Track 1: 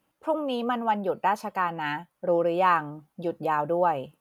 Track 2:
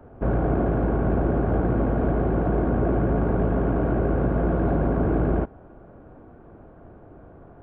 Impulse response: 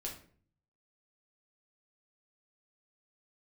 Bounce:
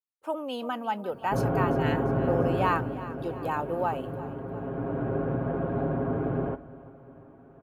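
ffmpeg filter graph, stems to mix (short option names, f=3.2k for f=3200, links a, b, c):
-filter_complex "[0:a]agate=range=-33dB:threshold=-50dB:ratio=3:detection=peak,highshelf=f=3.5k:g=7,volume=-5.5dB,asplit=2[a][b];[b]volume=-15.5dB[c];[1:a]aecho=1:1:7.4:0.83,adelay=1100,volume=2dB,afade=t=out:st=2.47:d=0.5:silence=0.281838,afade=t=in:st=4.5:d=0.62:silence=0.398107,asplit=3[d][e][f];[e]volume=-10.5dB[g];[f]volume=-18.5dB[h];[2:a]atrim=start_sample=2205[i];[g][i]afir=irnorm=-1:irlink=0[j];[c][h]amix=inputs=2:normalize=0,aecho=0:1:347|694|1041|1388|1735|2082|2429|2776:1|0.54|0.292|0.157|0.085|0.0459|0.0248|0.0134[k];[a][d][j][k]amix=inputs=4:normalize=0,highpass=47,equalizer=f=62:t=o:w=0.61:g=-10.5"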